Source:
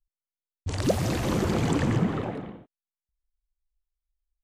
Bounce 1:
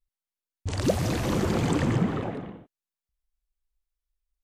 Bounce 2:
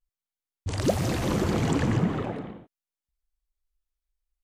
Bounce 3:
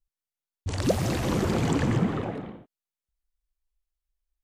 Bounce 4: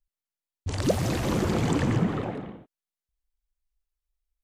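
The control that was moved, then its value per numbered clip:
vibrato, rate: 0.71, 0.42, 2.1, 9.6 Hz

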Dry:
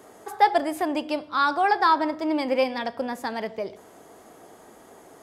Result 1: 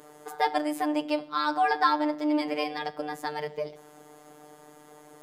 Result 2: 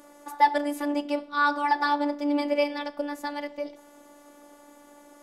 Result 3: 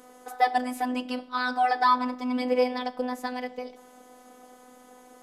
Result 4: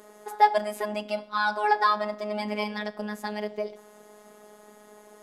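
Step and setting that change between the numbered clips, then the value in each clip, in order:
robotiser, frequency: 150, 290, 250, 210 Hz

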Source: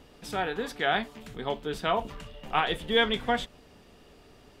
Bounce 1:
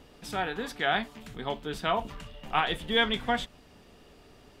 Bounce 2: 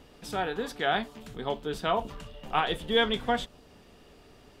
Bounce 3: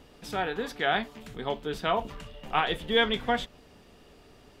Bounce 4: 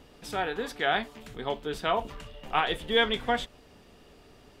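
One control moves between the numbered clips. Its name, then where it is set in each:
dynamic EQ, frequency: 460, 2100, 8900, 180 Hz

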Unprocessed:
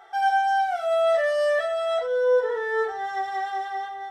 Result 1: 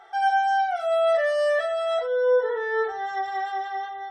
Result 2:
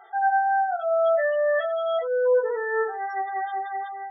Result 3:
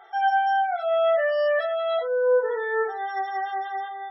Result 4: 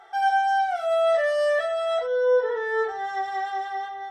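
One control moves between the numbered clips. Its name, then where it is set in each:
spectral gate, under each frame's peak: -45, -20, -30, -55 dB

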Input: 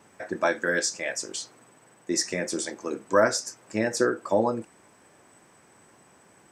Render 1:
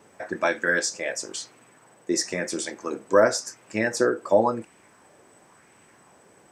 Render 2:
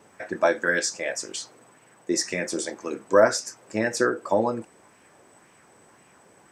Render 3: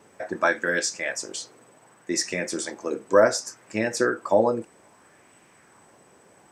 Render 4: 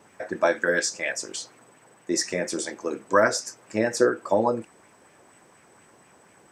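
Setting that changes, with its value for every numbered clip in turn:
LFO bell, rate: 0.95, 1.9, 0.65, 4.2 Hz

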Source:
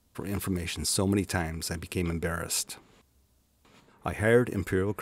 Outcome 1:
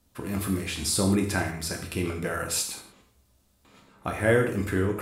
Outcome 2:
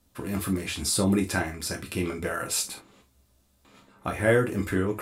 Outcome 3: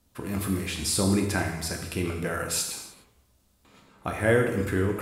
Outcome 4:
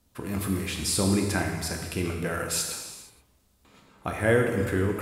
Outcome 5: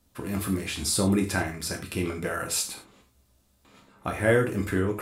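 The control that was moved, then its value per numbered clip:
non-linear reverb, gate: 210, 90, 330, 500, 130 ms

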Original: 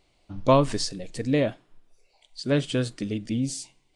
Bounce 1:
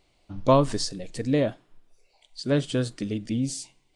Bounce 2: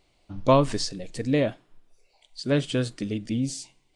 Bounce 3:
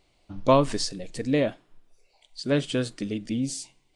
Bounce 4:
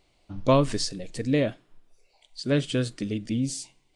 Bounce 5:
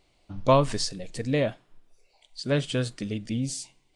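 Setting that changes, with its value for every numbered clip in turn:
dynamic EQ, frequency: 2400, 10000, 110, 850, 310 Hz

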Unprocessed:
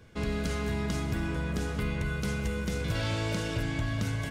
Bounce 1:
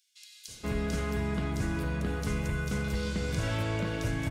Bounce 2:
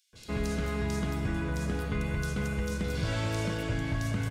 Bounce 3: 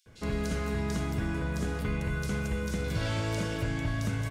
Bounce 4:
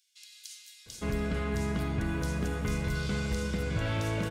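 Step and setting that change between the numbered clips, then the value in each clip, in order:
bands offset in time, time: 480, 130, 60, 860 ms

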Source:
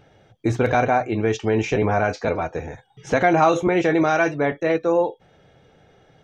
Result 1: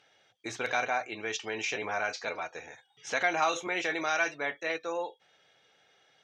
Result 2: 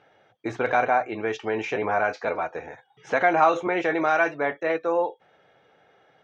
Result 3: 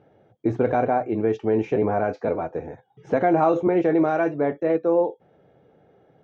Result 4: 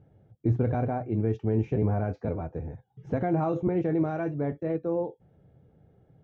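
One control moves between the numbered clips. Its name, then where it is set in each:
band-pass, frequency: 4500, 1300, 370, 100 Hz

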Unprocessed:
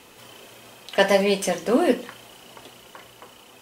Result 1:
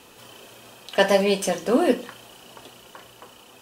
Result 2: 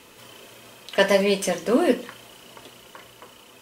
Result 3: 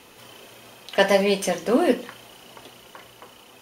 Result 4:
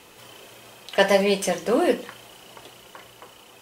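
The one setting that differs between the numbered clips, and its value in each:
notch, frequency: 2100, 770, 7800, 250 Hz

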